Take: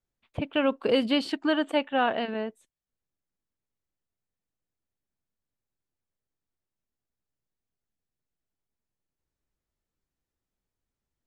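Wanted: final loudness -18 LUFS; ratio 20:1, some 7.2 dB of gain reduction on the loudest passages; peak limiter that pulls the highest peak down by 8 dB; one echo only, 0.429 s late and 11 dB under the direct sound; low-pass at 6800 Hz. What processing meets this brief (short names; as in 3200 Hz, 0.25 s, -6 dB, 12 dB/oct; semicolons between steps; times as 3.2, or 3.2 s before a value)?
LPF 6800 Hz; compressor 20:1, threshold -26 dBFS; limiter -25.5 dBFS; echo 0.429 s -11 dB; gain +18 dB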